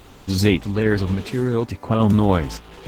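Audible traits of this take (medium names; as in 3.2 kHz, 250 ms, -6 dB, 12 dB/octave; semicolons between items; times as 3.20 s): a quantiser's noise floor 10-bit, dither triangular; random-step tremolo; Opus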